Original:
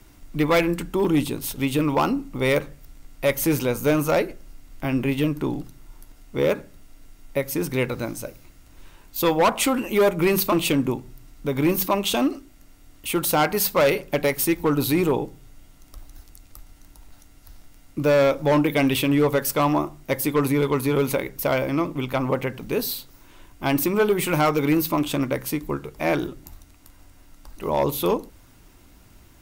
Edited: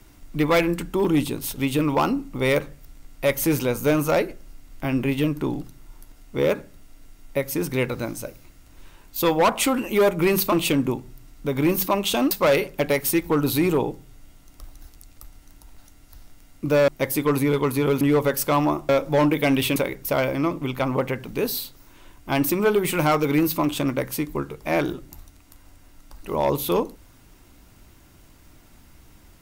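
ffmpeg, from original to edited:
-filter_complex "[0:a]asplit=6[s0][s1][s2][s3][s4][s5];[s0]atrim=end=12.312[s6];[s1]atrim=start=13.648:end=18.222[s7];[s2]atrim=start=19.968:end=21.102[s8];[s3]atrim=start=19.088:end=19.972[s9];[s4]atrim=start=18.218:end=19.092[s10];[s5]atrim=start=21.098[s11];[s6][s7]acrossfade=d=0.004:c1=hsin:c2=hsin[s12];[s12][s8]acrossfade=d=0.004:c1=hsin:c2=hsin[s13];[s13][s9]acrossfade=d=0.004:c1=hsin:c2=hsin[s14];[s14][s10]acrossfade=d=0.004:c1=hsin:c2=hsin[s15];[s15][s11]acrossfade=d=0.004:c1=hsin:c2=hsin"

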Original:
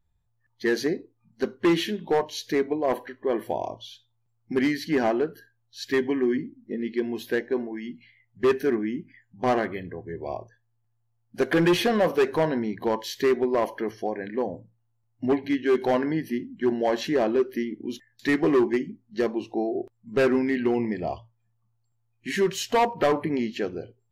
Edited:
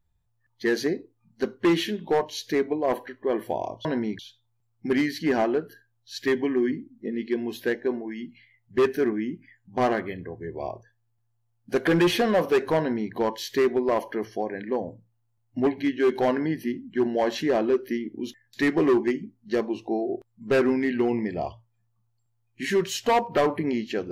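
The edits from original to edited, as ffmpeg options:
-filter_complex "[0:a]asplit=3[s0][s1][s2];[s0]atrim=end=3.852[s3];[s1]atrim=start=12.448:end=12.792[s4];[s2]atrim=start=3.848[s5];[s3][s4]acrossfade=d=0.004:c1=hsin:c2=hsin[s6];[s6][s5]acrossfade=d=0.004:c1=hsin:c2=hsin"

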